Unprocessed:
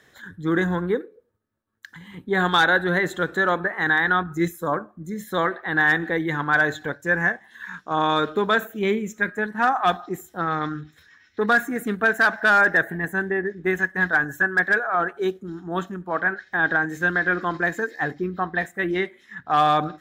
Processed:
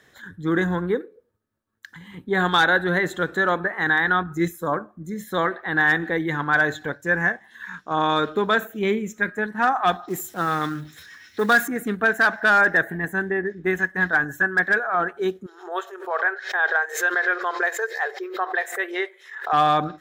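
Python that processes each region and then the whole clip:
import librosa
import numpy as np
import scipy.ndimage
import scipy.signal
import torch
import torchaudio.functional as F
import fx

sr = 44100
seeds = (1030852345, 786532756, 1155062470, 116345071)

y = fx.chain(x, sr, fx.law_mismatch(coded='mu'),
    fx.highpass(hz=78.0, slope=12),
    fx.high_shelf(hz=3700.0, db=8.5), at=(10.08, 11.68))
y = fx.chain(y, sr, fx.brickwall_highpass(low_hz=360.0),
    fx.pre_swell(db_per_s=120.0), at=(15.46, 19.53))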